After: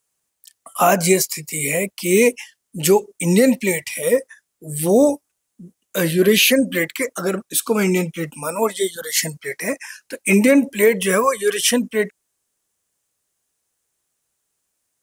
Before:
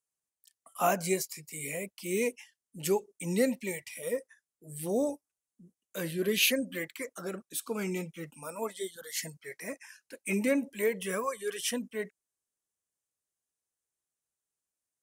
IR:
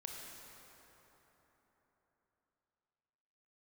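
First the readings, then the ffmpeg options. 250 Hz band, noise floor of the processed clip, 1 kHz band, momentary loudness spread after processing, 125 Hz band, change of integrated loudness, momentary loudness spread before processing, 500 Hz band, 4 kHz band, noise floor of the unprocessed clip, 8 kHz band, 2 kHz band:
+15.5 dB, -76 dBFS, +13.5 dB, 12 LU, +16.0 dB, +14.5 dB, 14 LU, +15.0 dB, +13.0 dB, under -85 dBFS, +15.0 dB, +14.5 dB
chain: -af "alimiter=level_in=9.44:limit=0.891:release=50:level=0:latency=1,volume=0.668"

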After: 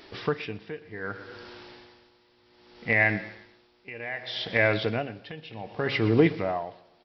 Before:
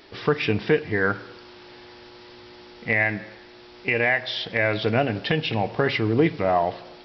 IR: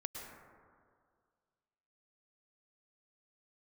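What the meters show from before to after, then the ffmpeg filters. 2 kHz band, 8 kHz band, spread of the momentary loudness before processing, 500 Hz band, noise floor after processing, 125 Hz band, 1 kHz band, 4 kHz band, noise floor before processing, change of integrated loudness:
-4.0 dB, no reading, 10 LU, -5.0 dB, -63 dBFS, -4.0 dB, -7.5 dB, -5.5 dB, -47 dBFS, -3.5 dB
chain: -af "aecho=1:1:121|242|363|484:0.126|0.0655|0.034|0.0177,aeval=exprs='val(0)*pow(10,-18*(0.5-0.5*cos(2*PI*0.65*n/s))/20)':c=same"

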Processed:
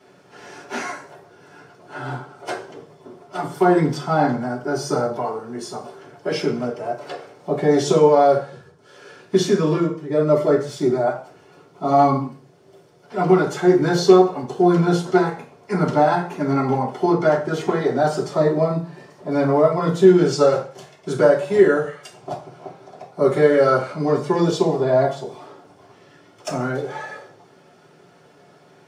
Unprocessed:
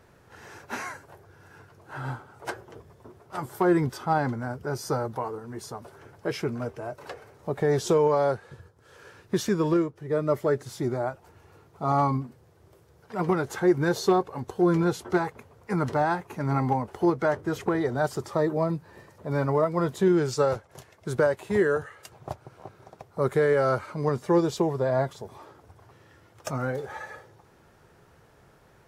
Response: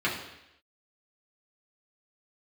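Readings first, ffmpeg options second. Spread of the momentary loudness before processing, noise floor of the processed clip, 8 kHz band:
16 LU, -52 dBFS, +6.0 dB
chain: -filter_complex "[1:a]atrim=start_sample=2205,asetrate=88200,aresample=44100[s0];[0:a][s0]afir=irnorm=-1:irlink=0,volume=1.26"

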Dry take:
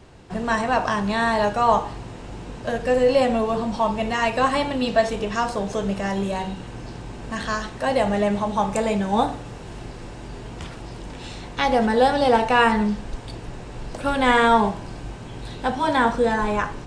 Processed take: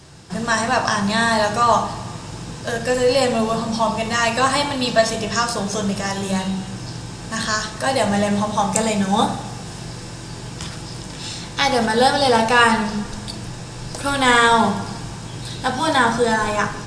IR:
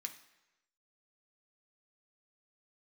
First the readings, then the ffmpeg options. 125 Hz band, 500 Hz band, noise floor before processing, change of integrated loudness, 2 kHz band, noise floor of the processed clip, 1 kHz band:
+5.0 dB, +1.0 dB, -37 dBFS, +2.5 dB, +5.0 dB, -34 dBFS, +2.5 dB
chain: -filter_complex "[0:a]bass=f=250:g=7,treble=f=4000:g=10,asplit=2[s0][s1];[1:a]atrim=start_sample=2205,asetrate=29547,aresample=44100[s2];[s1][s2]afir=irnorm=-1:irlink=0,volume=1.88[s3];[s0][s3]amix=inputs=2:normalize=0,volume=0.596"

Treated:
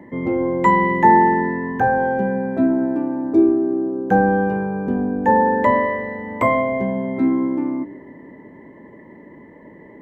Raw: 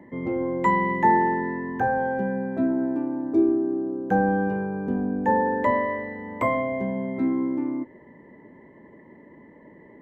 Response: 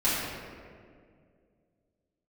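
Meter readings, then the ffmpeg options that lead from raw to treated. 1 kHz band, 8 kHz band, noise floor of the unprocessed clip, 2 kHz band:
+6.5 dB, no reading, -50 dBFS, +6.0 dB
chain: -filter_complex "[0:a]asplit=2[s0][s1];[1:a]atrim=start_sample=2205,adelay=18[s2];[s1][s2]afir=irnorm=-1:irlink=0,volume=0.0398[s3];[s0][s3]amix=inputs=2:normalize=0,volume=2"

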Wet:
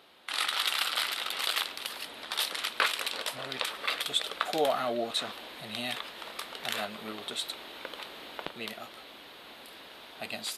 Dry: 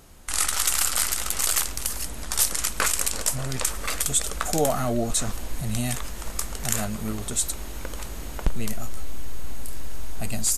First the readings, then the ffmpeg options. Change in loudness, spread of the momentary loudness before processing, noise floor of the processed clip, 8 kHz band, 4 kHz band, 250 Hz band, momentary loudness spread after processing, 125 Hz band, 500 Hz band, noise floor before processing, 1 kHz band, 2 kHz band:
-6.5 dB, 16 LU, -50 dBFS, -18.0 dB, +1.0 dB, -11.0 dB, 17 LU, -23.0 dB, -3.5 dB, -34 dBFS, -2.0 dB, -0.5 dB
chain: -af "highpass=400,highshelf=f=5000:t=q:w=3:g=-11,volume=0.75"

